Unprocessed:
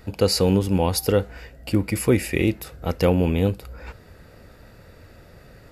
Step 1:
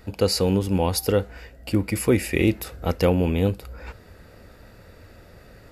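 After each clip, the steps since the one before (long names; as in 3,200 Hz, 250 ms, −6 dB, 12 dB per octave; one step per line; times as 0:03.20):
parametric band 140 Hz −6.5 dB 0.23 octaves
speech leveller within 4 dB 0.5 s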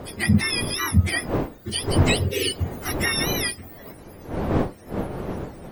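frequency axis turned over on the octave scale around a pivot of 990 Hz
wind on the microphone 440 Hz −29 dBFS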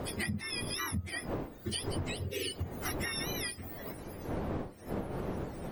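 downward compressor 12 to 1, threshold −31 dBFS, peak gain reduction 20 dB
level −1.5 dB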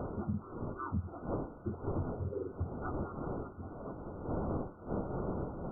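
in parallel at −11 dB: bit-depth reduction 6 bits, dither triangular
on the sum: linear-phase brick-wall low-pass 1,500 Hz
level −2 dB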